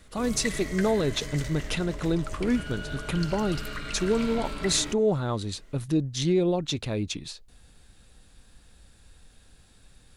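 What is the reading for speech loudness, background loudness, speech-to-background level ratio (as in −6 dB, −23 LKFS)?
−27.5 LKFS, −36.5 LKFS, 9.0 dB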